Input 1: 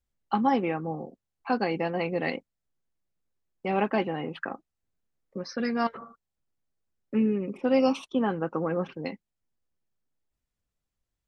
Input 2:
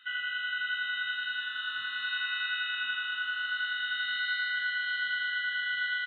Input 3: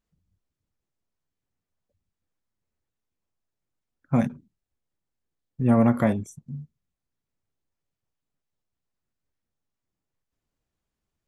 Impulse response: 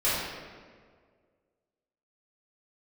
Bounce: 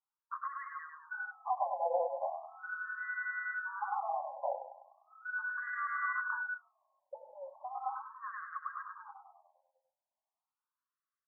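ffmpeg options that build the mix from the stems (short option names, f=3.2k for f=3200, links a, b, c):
-filter_complex "[0:a]volume=2.5dB,asplit=3[a][b][c];[b]volume=-9.5dB[d];[1:a]highshelf=f=2.1k:g=-12,acontrast=85,adelay=1050,volume=-7dB[e];[2:a]highpass=380,adelay=300,volume=-0.5dB[f];[c]apad=whole_len=313608[g];[e][g]sidechaincompress=threshold=-28dB:ratio=8:attack=38:release=271[h];[a][f]amix=inputs=2:normalize=0,lowpass=f=1.3k:w=0.5412,lowpass=f=1.3k:w=1.3066,alimiter=limit=-19dB:level=0:latency=1:release=190,volume=0dB[i];[d]aecho=0:1:100|200|300|400|500|600|700|800:1|0.52|0.27|0.141|0.0731|0.038|0.0198|0.0103[j];[h][i][j]amix=inputs=3:normalize=0,afftfilt=real='re*between(b*sr/1024,720*pow(1500/720,0.5+0.5*sin(2*PI*0.38*pts/sr))/1.41,720*pow(1500/720,0.5+0.5*sin(2*PI*0.38*pts/sr))*1.41)':imag='im*between(b*sr/1024,720*pow(1500/720,0.5+0.5*sin(2*PI*0.38*pts/sr))/1.41,720*pow(1500/720,0.5+0.5*sin(2*PI*0.38*pts/sr))*1.41)':win_size=1024:overlap=0.75"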